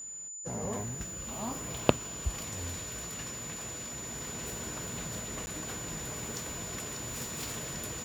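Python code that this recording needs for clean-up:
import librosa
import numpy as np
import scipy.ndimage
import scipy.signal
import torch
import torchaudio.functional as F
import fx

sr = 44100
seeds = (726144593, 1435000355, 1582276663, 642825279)

y = fx.notch(x, sr, hz=7000.0, q=30.0)
y = fx.fix_interpolate(y, sr, at_s=(5.46,), length_ms=10.0)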